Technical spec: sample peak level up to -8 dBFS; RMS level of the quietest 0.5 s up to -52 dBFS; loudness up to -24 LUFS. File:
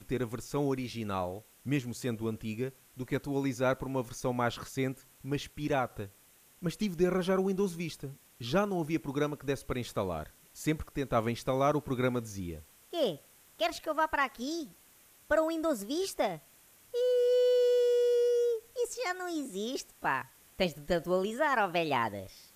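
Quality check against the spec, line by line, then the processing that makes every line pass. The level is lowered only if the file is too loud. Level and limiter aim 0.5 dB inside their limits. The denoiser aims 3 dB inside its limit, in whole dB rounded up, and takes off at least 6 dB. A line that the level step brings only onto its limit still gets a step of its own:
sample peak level -15.0 dBFS: pass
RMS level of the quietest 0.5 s -61 dBFS: pass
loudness -32.0 LUFS: pass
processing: none needed

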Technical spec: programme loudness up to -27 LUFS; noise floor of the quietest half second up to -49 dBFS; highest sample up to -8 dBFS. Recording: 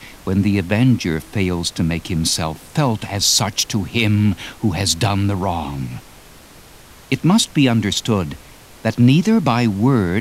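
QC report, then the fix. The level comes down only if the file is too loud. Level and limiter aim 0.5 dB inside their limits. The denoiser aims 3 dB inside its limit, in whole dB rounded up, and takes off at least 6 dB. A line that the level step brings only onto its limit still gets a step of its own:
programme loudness -17.5 LUFS: fail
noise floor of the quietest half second -43 dBFS: fail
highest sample -3.5 dBFS: fail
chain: trim -10 dB

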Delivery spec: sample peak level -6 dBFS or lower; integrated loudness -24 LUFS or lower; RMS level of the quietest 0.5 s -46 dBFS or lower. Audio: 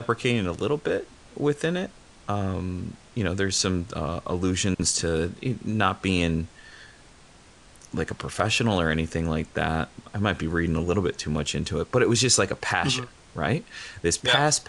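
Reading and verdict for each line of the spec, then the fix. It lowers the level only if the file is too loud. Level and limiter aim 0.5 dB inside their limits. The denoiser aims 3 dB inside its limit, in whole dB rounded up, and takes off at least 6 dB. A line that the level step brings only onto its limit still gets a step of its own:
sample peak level -5.0 dBFS: fail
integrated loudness -25.5 LUFS: pass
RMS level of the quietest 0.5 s -52 dBFS: pass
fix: peak limiter -6.5 dBFS

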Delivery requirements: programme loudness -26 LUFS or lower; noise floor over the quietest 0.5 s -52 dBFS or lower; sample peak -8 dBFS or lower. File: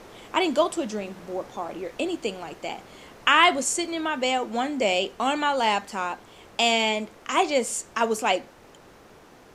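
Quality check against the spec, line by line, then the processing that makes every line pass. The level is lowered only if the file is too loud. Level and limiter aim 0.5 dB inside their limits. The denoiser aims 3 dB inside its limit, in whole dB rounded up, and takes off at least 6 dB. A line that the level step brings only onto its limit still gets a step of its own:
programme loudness -25.0 LUFS: fail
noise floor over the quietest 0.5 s -51 dBFS: fail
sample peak -4.5 dBFS: fail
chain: trim -1.5 dB; peak limiter -8.5 dBFS

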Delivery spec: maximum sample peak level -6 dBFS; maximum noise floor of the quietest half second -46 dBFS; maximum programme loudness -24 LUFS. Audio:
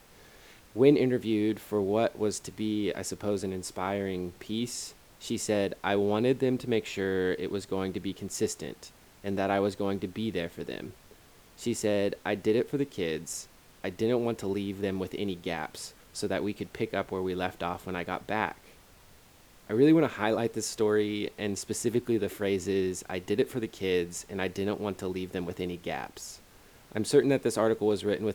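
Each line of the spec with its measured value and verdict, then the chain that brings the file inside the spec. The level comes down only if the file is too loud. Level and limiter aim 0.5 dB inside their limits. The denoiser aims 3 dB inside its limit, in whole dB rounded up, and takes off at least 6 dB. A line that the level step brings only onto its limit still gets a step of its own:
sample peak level -8.5 dBFS: pass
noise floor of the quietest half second -56 dBFS: pass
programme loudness -30.0 LUFS: pass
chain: none needed

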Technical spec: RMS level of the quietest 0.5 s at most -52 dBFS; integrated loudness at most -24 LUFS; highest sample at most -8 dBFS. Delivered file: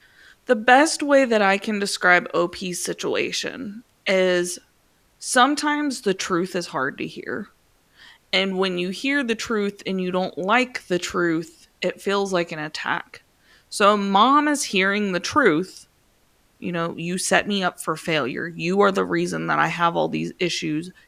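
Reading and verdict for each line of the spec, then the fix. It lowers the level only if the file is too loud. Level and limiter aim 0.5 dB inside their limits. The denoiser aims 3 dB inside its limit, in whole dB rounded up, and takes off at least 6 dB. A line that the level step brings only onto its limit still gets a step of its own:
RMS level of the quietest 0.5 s -61 dBFS: pass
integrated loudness -21.5 LUFS: fail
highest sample -2.5 dBFS: fail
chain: trim -3 dB; peak limiter -8.5 dBFS

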